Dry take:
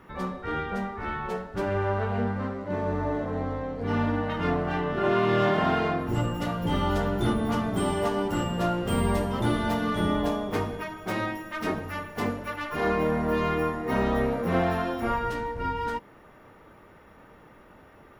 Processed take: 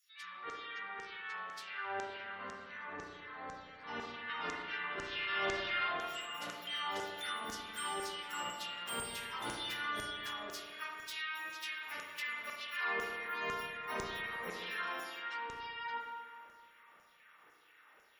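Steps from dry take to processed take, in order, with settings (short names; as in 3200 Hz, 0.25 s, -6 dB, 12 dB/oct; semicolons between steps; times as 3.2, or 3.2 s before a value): LFO high-pass saw down 2 Hz 490–6700 Hz; passive tone stack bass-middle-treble 6-0-2; spectral gate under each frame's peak -30 dB strong; spring tank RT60 1.8 s, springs 33/51 ms, chirp 60 ms, DRR 0 dB; gain +10.5 dB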